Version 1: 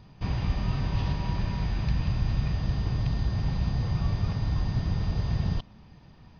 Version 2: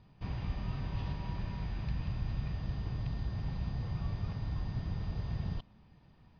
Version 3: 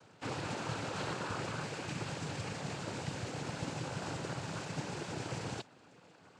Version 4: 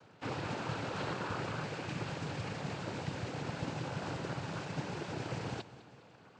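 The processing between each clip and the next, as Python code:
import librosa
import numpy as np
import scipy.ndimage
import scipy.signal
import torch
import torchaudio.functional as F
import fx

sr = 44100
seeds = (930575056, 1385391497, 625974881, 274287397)

y1 = scipy.signal.sosfilt(scipy.signal.butter(2, 4700.0, 'lowpass', fs=sr, output='sos'), x)
y1 = F.gain(torch.from_numpy(y1), -9.0).numpy()
y2 = fx.mod_noise(y1, sr, seeds[0], snr_db=22)
y2 = fx.low_shelf_res(y2, sr, hz=250.0, db=-10.5, q=1.5)
y2 = fx.noise_vocoder(y2, sr, seeds[1], bands=8)
y2 = F.gain(torch.from_numpy(y2), 9.0).numpy()
y3 = fx.air_absorb(y2, sr, metres=93.0)
y3 = fx.echo_feedback(y3, sr, ms=205, feedback_pct=55, wet_db=-17.0)
y3 = F.gain(torch.from_numpy(y3), 1.0).numpy()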